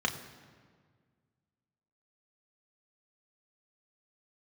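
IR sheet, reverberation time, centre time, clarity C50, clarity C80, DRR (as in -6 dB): 1.8 s, 20 ms, 10.5 dB, 11.5 dB, 2.5 dB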